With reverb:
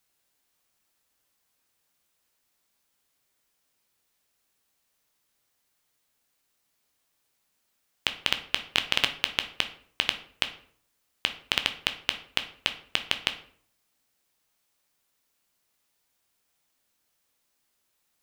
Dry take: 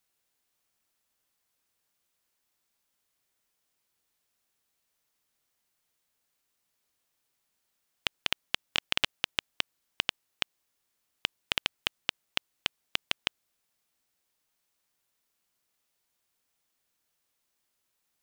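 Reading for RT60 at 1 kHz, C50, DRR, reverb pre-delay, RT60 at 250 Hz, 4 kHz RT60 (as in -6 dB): 0.55 s, 12.5 dB, 7.5 dB, 9 ms, 0.65 s, 0.40 s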